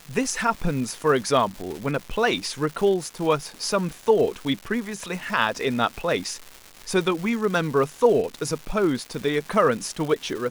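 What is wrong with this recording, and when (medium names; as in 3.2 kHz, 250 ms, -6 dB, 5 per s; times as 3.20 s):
crackle 430 per s -31 dBFS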